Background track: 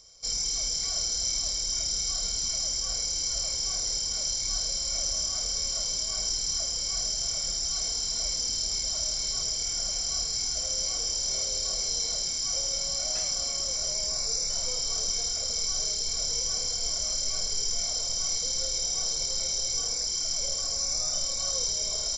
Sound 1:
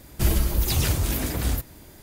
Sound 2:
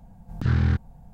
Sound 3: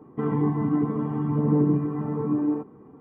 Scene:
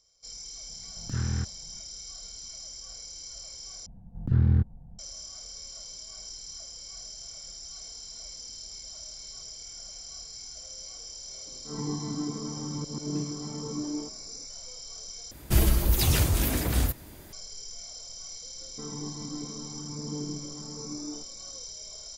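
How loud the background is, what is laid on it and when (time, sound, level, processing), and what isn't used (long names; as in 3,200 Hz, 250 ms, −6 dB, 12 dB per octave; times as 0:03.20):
background track −13 dB
0:00.68: mix in 2 −8.5 dB
0:03.86: overwrite with 2 −9.5 dB + tilt shelving filter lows +9.5 dB, about 780 Hz
0:11.46: mix in 3 −9.5 dB + volume swells 153 ms
0:15.31: overwrite with 1 −0.5 dB
0:18.60: mix in 3 −15 dB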